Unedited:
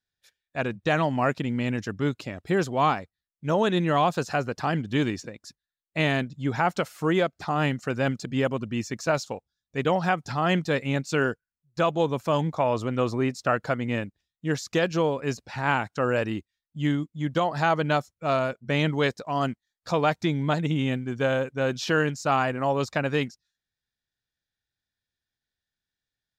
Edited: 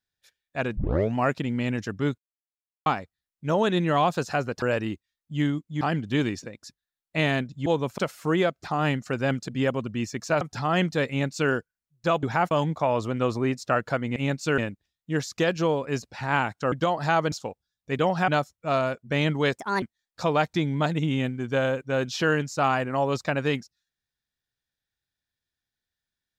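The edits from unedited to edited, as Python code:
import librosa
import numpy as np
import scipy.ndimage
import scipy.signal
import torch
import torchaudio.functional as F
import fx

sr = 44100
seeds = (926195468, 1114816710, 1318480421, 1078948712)

y = fx.edit(x, sr, fx.tape_start(start_s=0.77, length_s=0.39),
    fx.silence(start_s=2.18, length_s=0.68),
    fx.swap(start_s=6.47, length_s=0.28, other_s=11.96, other_length_s=0.32),
    fx.move(start_s=9.18, length_s=0.96, to_s=17.86),
    fx.duplicate(start_s=10.82, length_s=0.42, to_s=13.93),
    fx.move(start_s=16.07, length_s=1.19, to_s=4.62),
    fx.speed_span(start_s=19.16, length_s=0.34, speed=1.41), tone=tone)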